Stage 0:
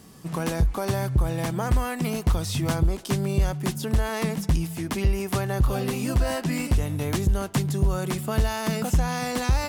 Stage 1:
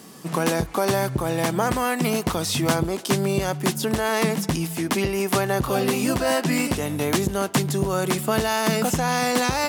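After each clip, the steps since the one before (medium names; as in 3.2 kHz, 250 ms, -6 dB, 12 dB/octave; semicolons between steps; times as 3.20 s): high-pass 210 Hz 12 dB/octave; trim +7 dB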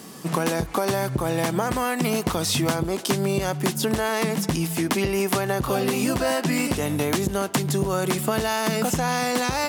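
compression, threshold -22 dBFS, peak gain reduction 7 dB; trim +3 dB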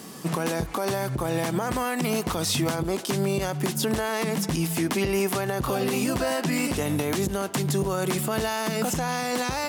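peak limiter -16 dBFS, peak gain reduction 7.5 dB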